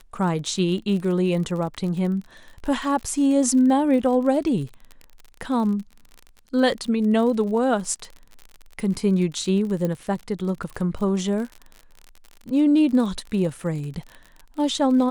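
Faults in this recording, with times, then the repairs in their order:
crackle 45 per s -31 dBFS
9.85 s: pop -14 dBFS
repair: de-click

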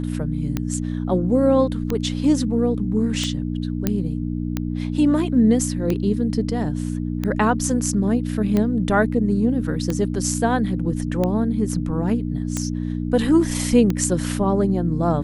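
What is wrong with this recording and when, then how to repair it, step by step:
hum 60 Hz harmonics 5 -25 dBFS
tick 45 rpm -10 dBFS
3.87 s: pop -6 dBFS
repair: de-click; de-hum 60 Hz, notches 5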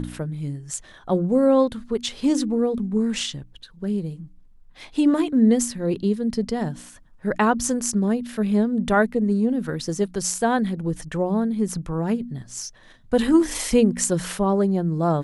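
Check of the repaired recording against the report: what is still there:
3.87 s: pop

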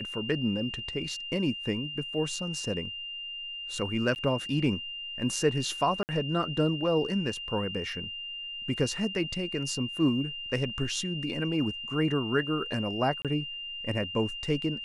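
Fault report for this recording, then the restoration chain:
whine 2.8 kHz -36 dBFS
4.15–4.16 s: dropout 9.9 ms
6.03–6.09 s: dropout 59 ms
13.22–13.25 s: dropout 27 ms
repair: band-stop 2.8 kHz, Q 30; interpolate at 4.15 s, 9.9 ms; interpolate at 6.03 s, 59 ms; interpolate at 13.22 s, 27 ms

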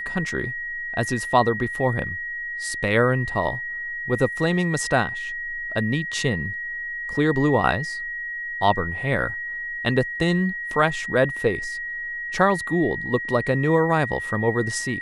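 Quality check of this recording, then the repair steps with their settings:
whine 1.9 kHz -28 dBFS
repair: band-stop 1.9 kHz, Q 30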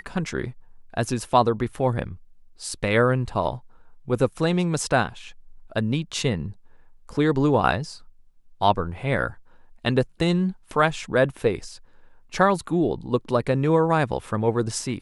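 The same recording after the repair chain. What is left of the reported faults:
nothing left

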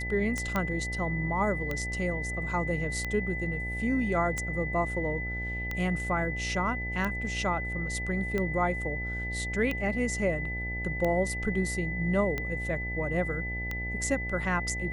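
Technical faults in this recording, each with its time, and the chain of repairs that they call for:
buzz 60 Hz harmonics 15 -36 dBFS
tick 45 rpm -18 dBFS
whine 2 kHz -34 dBFS
0.56 s: pop -15 dBFS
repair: de-click; de-hum 60 Hz, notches 15; band-stop 2 kHz, Q 30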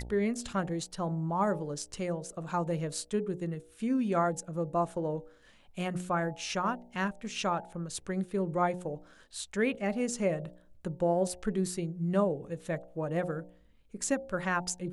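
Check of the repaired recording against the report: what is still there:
0.56 s: pop

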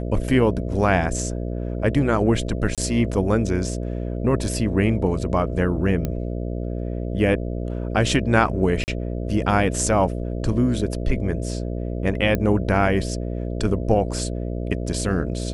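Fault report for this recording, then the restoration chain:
buzz 60 Hz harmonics 11 -27 dBFS
2.75–2.78 s: dropout 27 ms
6.05 s: pop -12 dBFS
8.84–8.88 s: dropout 39 ms
12.35 s: pop -10 dBFS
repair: de-click; de-hum 60 Hz, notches 11; interpolate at 2.75 s, 27 ms; interpolate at 8.84 s, 39 ms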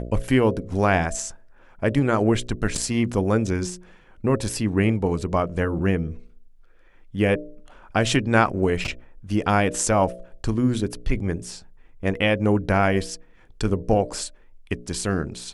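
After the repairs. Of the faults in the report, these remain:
nothing left

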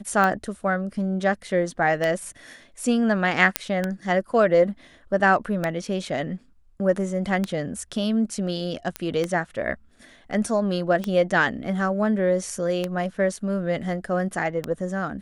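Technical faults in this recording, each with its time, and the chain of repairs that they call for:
tick 33 1/3 rpm -11 dBFS
3.56 s: pop -1 dBFS
8.96 s: pop -11 dBFS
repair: de-click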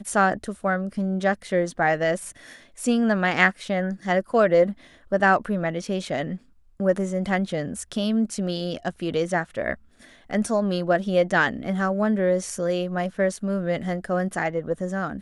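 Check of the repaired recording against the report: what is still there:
8.96 s: pop

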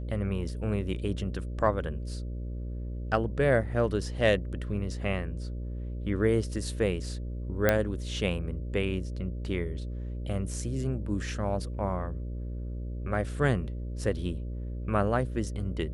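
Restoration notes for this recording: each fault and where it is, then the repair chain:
buzz 60 Hz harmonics 10 -35 dBFS
7.69 s: pop -9 dBFS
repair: de-click; de-hum 60 Hz, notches 10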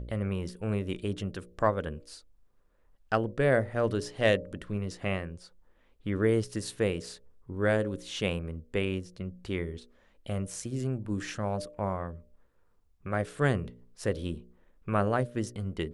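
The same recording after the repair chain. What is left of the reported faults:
7.69 s: pop

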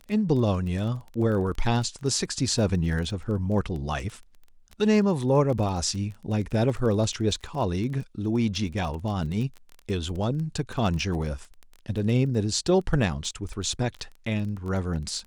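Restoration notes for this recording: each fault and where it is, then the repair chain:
crackle 21 per s -32 dBFS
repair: de-click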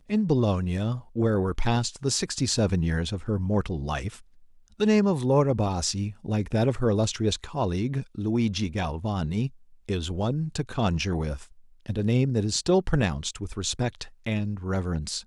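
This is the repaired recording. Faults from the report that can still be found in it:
nothing left

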